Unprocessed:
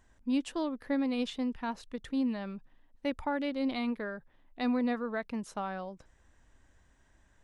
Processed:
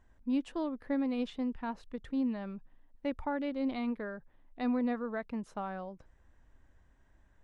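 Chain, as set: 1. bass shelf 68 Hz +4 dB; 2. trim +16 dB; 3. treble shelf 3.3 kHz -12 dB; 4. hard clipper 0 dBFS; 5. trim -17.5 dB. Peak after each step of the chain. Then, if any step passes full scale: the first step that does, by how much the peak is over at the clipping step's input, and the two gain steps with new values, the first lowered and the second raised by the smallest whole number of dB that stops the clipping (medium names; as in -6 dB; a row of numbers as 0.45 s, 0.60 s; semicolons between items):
-19.5 dBFS, -3.5 dBFS, -4.0 dBFS, -4.0 dBFS, -21.5 dBFS; nothing clips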